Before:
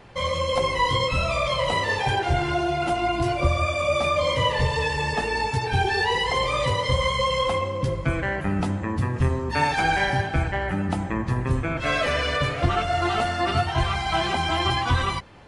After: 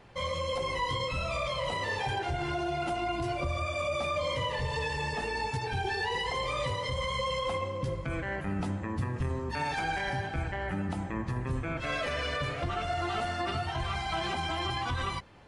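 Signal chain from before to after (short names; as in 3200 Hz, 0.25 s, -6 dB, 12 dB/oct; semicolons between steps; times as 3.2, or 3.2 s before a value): limiter -16 dBFS, peak gain reduction 7 dB; gain -7 dB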